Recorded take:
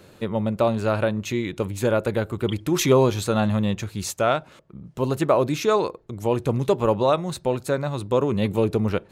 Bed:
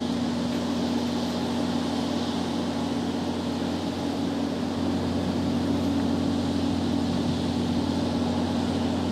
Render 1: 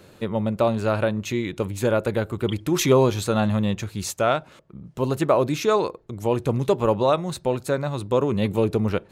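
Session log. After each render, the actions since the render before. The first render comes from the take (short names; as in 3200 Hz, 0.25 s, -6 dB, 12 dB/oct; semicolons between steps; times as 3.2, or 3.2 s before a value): nothing audible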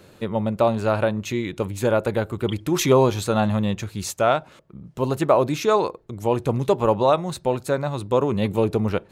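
dynamic EQ 820 Hz, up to +4 dB, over -32 dBFS, Q 1.7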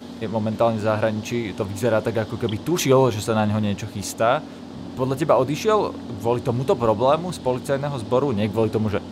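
add bed -9.5 dB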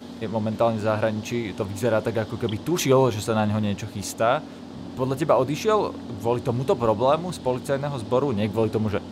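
gain -2 dB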